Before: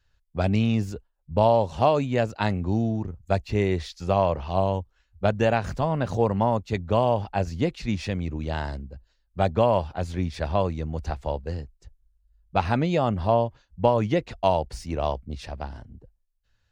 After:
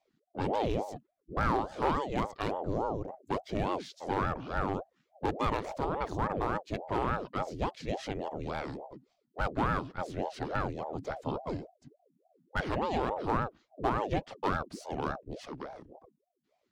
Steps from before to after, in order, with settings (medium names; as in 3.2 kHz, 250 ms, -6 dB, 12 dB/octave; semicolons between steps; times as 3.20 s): one-sided clip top -15.5 dBFS; 11.16–11.57 s: comb 2.7 ms, depth 97%; ring modulator with a swept carrier 460 Hz, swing 60%, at 3.5 Hz; trim -5 dB